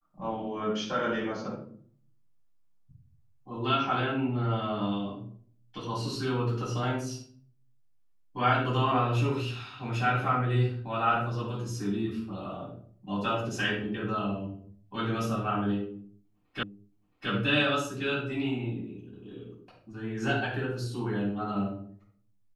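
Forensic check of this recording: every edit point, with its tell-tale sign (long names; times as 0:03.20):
0:16.63: the same again, the last 0.67 s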